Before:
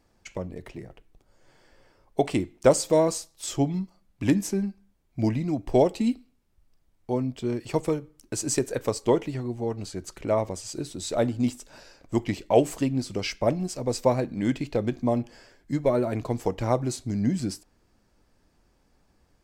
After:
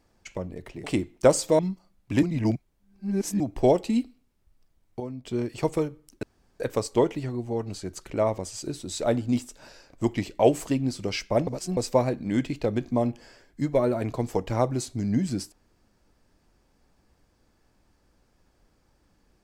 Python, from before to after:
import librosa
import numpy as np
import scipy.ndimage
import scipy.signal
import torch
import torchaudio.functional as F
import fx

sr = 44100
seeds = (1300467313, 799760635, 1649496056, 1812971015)

y = fx.edit(x, sr, fx.cut(start_s=0.84, length_s=1.41),
    fx.cut(start_s=3.0, length_s=0.7),
    fx.reverse_span(start_s=4.34, length_s=1.17),
    fx.clip_gain(start_s=7.11, length_s=0.25, db=-9.0),
    fx.room_tone_fill(start_s=8.34, length_s=0.37),
    fx.reverse_span(start_s=13.58, length_s=0.3), tone=tone)